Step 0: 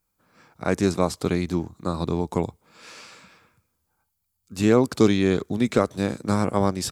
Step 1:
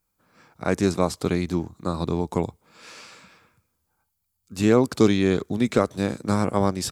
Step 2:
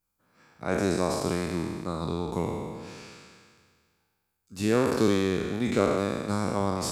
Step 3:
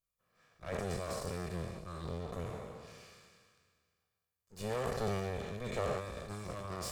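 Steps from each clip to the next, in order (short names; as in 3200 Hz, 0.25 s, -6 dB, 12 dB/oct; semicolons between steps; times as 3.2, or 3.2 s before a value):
nothing audible
spectral trails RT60 1.88 s; gain -7.5 dB
minimum comb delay 1.7 ms; gain -8.5 dB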